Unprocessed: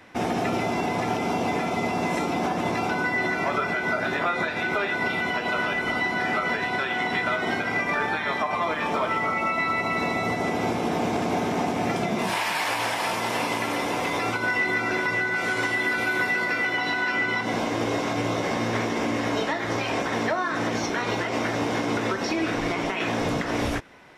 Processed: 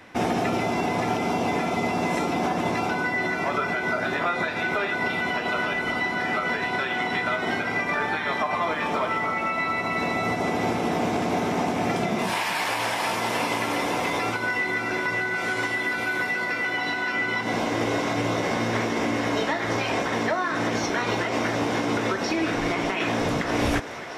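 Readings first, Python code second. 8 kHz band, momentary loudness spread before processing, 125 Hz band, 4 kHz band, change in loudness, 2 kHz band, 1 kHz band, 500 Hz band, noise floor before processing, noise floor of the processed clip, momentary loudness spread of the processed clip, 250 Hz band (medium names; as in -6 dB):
+0.5 dB, 3 LU, +0.5 dB, +0.5 dB, 0.0 dB, -0.5 dB, +0.5 dB, +0.5 dB, -29 dBFS, -29 dBFS, 1 LU, +0.5 dB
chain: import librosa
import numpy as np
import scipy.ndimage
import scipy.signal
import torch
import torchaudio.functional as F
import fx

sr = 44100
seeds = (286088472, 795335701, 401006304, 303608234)

y = fx.echo_thinned(x, sr, ms=623, feedback_pct=81, hz=210.0, wet_db=-18)
y = fx.rider(y, sr, range_db=10, speed_s=0.5)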